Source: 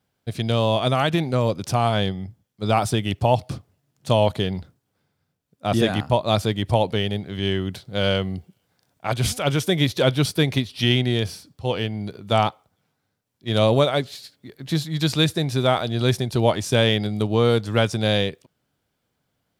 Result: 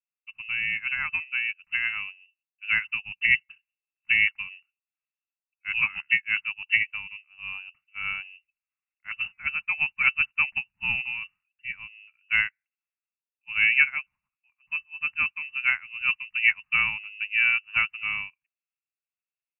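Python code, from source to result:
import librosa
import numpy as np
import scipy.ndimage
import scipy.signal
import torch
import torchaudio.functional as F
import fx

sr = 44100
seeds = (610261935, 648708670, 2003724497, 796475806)

y = fx.freq_invert(x, sr, carrier_hz=2800)
y = scipy.signal.sosfilt(scipy.signal.cheby1(2, 1.0, [170.0, 1100.0], 'bandstop', fs=sr, output='sos'), y)
y = fx.upward_expand(y, sr, threshold_db=-33.0, expansion=2.5)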